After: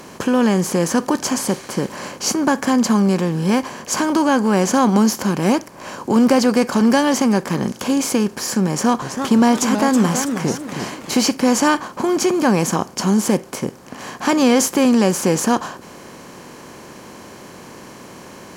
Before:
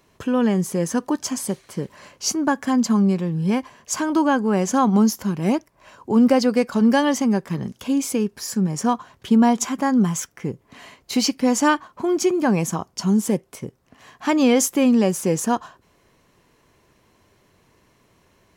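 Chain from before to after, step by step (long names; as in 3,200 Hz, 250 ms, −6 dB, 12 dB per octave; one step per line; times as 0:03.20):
compressor on every frequency bin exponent 0.6
0:08.70–0:11.13: feedback echo with a swinging delay time 323 ms, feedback 39%, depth 211 cents, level −7.5 dB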